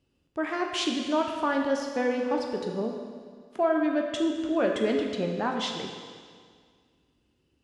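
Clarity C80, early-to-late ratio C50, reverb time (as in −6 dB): 5.0 dB, 3.5 dB, 1.9 s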